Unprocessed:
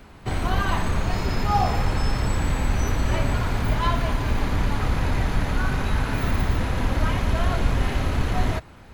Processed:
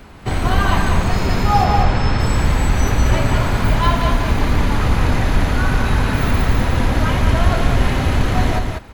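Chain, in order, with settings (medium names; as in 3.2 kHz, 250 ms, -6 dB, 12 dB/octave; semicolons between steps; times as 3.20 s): 1.64–2.20 s: low-pass 5.3 kHz 12 dB/octave; delay 192 ms -5 dB; trim +6 dB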